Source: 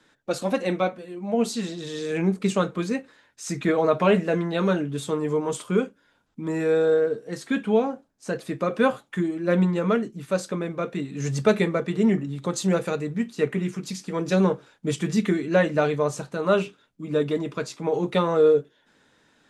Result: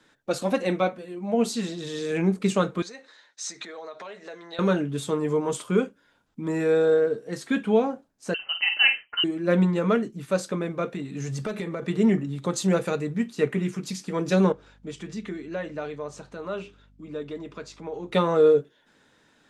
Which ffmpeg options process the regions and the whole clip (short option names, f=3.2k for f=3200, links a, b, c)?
-filter_complex "[0:a]asettb=1/sr,asplit=3[a][b][c];[a]atrim=end=2.824[d];[b]atrim=start=2.82:end=4.59,asetpts=PTS-STARTPTS,afade=t=in:d=0.004:c=qsin,afade=t=out:st=1.766:d=0.004:c=qsin,acompressor=threshold=-32dB:ratio=16:attack=3.2:release=140:knee=1:detection=peak,highpass=500,equalizer=f=1.9k:t=q:w=4:g=3,equalizer=f=2.6k:t=q:w=4:g=-3,equalizer=f=4k:t=q:w=4:g=10,equalizer=f=6k:t=q:w=4:g=6,lowpass=f=8.8k:w=0.5412,lowpass=f=8.8k:w=1.3066[e];[c]atrim=start=4.586[f];[d][e]acrossfade=d=0.004:c1=hsin:c2=qsin[g];[g][f]acrossfade=d=0.004:c1=qsin:c2=hsin,asettb=1/sr,asplit=3[h][i][j];[h]atrim=end=8.344[k];[i]atrim=start=8.34:end=9.24,asetpts=PTS-STARTPTS,afade=t=in:d=0.004:c=qsin,afade=t=out:st=0.896:d=0.004:c=qsin,asplit=2[l][m];[m]adelay=48,volume=-9dB[n];[l][n]amix=inputs=2:normalize=0,atrim=end_sample=39690,lowpass=f=2.7k:t=q:w=0.5098,lowpass=f=2.7k:t=q:w=0.6013,lowpass=f=2.7k:t=q:w=0.9,lowpass=f=2.7k:t=q:w=2.563,afreqshift=-3200[o];[j]atrim=start=9.236[p];[k][o]acrossfade=d=0.004:c1=hsin:c2=qsin[q];[q][p]acrossfade=d=0.004:c1=qsin:c2=hsin,asettb=1/sr,asplit=3[r][s][t];[r]atrim=end=10.934[u];[s]atrim=start=10.93:end=11.83,asetpts=PTS-STARTPTS,afade=t=in:d=0.004:c=qsin,afade=t=out:st=0.896:d=0.004:c=qsin,asoftclip=type=hard:threshold=-12.5dB,acompressor=threshold=-27dB:ratio=8:attack=3.2:release=140:knee=1:detection=peak[v];[t]atrim=start=11.826[w];[u][v]acrossfade=d=0.004:c1=hsin:c2=qsin[x];[x][w]acrossfade=d=0.004:c1=qsin:c2=hsin,asettb=1/sr,asplit=3[y][z][aa];[y]atrim=end=14.524[ab];[z]atrim=start=14.52:end=18.12,asetpts=PTS-STARTPTS,afade=t=in:d=0.004:c=qsin,afade=t=out:st=3.596:d=0.004:c=qsin,acompressor=threshold=-48dB:ratio=1.5:attack=3.2:release=140:knee=1:detection=peak,highpass=170,lowpass=7k,aeval=exprs='val(0)+0.00158*(sin(2*PI*50*n/s)+sin(2*PI*2*50*n/s)/2+sin(2*PI*3*50*n/s)/3+sin(2*PI*4*50*n/s)/4+sin(2*PI*5*50*n/s)/5)':c=same[ac];[aa]atrim=start=18.116[ad];[ab][ac]acrossfade=d=0.004:c1=hsin:c2=qsin[ae];[ae][ad]acrossfade=d=0.004:c1=qsin:c2=hsin"